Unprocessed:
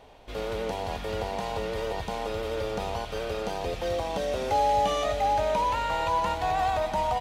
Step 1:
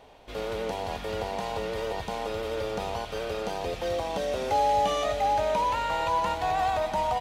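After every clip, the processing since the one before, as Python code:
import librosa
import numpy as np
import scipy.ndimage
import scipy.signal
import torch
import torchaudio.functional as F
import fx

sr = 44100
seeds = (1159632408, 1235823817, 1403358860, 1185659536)

y = fx.low_shelf(x, sr, hz=100.0, db=-5.0)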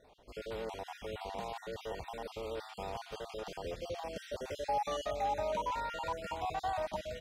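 y = fx.spec_dropout(x, sr, seeds[0], share_pct=37)
y = y * 10.0 ** (-8.0 / 20.0)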